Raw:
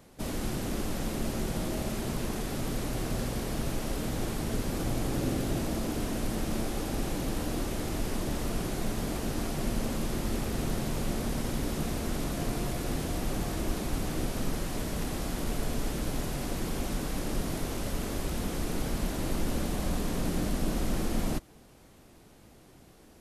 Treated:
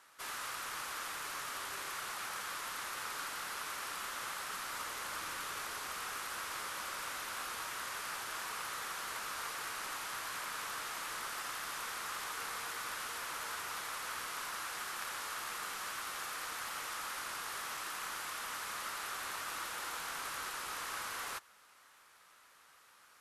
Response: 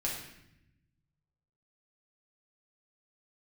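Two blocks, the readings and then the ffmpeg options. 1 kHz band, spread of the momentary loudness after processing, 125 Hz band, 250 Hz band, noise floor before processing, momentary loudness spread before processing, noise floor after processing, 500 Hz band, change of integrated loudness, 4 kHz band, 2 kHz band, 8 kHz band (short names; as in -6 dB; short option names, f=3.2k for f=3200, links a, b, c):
0.0 dB, 0 LU, -30.5 dB, -28.0 dB, -56 dBFS, 2 LU, -63 dBFS, -17.0 dB, -6.5 dB, -1.5 dB, +2.5 dB, -2.5 dB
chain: -af "highpass=f=1.5k:t=q:w=3,afreqshift=-240,volume=-2.5dB"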